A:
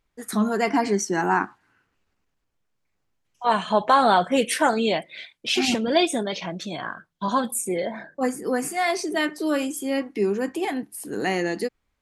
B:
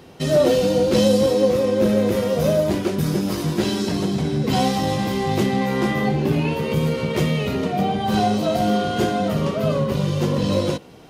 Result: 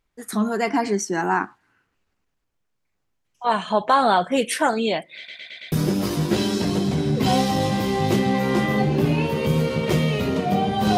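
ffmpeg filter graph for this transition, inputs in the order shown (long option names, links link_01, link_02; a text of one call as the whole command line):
ffmpeg -i cue0.wav -i cue1.wav -filter_complex "[0:a]apad=whole_dur=10.97,atrim=end=10.97,asplit=5[link_01][link_02][link_03][link_04][link_05];[link_01]atrim=end=5.282[link_06];[link_02]atrim=start=5.168:end=5.282[link_07];[link_03]atrim=start=5.168:end=5.282[link_08];[link_04]atrim=start=5.168:end=5.282[link_09];[link_05]atrim=start=5.168:end=5.282[link_10];[1:a]atrim=start=2.988:end=8.24[link_11];[link_06][link_07]acrossfade=duration=0.004:curve1=hsin:curve2=hsin[link_12];[link_12][link_08]acrossfade=duration=0.004:curve1=hsin:curve2=hsin[link_13];[link_13][link_09]acrossfade=duration=0.004:curve1=hsin:curve2=hsin[link_14];[link_14][link_10]acrossfade=duration=0.004:curve1=hsin:curve2=hsin[link_15];[link_15][link_11]acrossfade=duration=0.004:curve1=hsin:curve2=hsin" out.wav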